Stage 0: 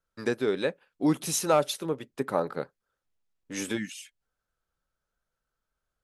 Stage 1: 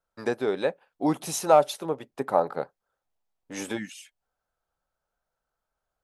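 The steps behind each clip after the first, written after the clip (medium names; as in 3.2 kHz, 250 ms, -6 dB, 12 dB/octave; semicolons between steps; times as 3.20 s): peaking EQ 760 Hz +11.5 dB 1 oct; trim -2.5 dB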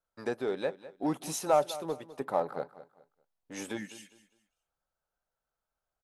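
in parallel at -9 dB: hard clipper -23 dBFS, distortion -4 dB; on the sum: feedback delay 204 ms, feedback 28%, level -16 dB; trim -8 dB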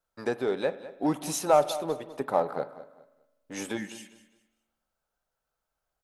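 reverberation RT60 1.2 s, pre-delay 40 ms, DRR 15.5 dB; trim +4 dB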